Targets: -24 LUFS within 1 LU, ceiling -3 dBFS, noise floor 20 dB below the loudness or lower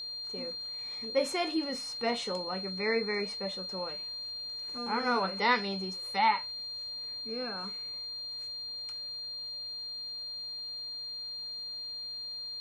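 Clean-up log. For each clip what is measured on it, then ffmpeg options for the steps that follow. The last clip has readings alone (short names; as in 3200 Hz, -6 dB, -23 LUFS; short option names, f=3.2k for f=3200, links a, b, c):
steady tone 4200 Hz; tone level -37 dBFS; loudness -33.5 LUFS; peak -13.5 dBFS; loudness target -24.0 LUFS
-> -af "bandreject=f=4.2k:w=30"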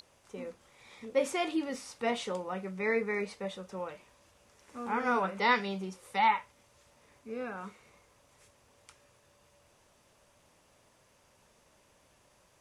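steady tone none; loudness -33.0 LUFS; peak -14.5 dBFS; loudness target -24.0 LUFS
-> -af "volume=9dB"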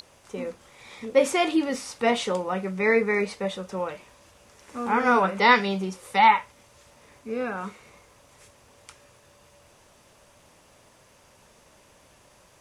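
loudness -24.0 LUFS; peak -5.5 dBFS; noise floor -57 dBFS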